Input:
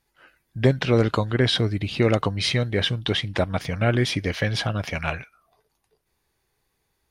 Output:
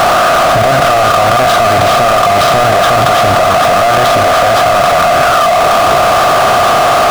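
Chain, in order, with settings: per-bin compression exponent 0.4; band shelf 950 Hz +12.5 dB; small resonant body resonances 710/1200 Hz, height 17 dB, ringing for 30 ms; power-law curve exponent 0.35; fast leveller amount 100%; gain -18 dB

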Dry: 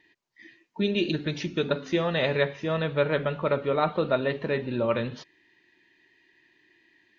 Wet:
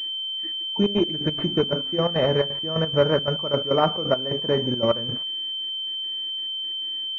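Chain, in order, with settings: step gate "x.x..x.xx" 174 bpm -12 dB; in parallel at -3 dB: compressor, threshold -38 dBFS, peak gain reduction 18 dB; on the sum: pulse-width modulation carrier 3100 Hz; gain +4.5 dB

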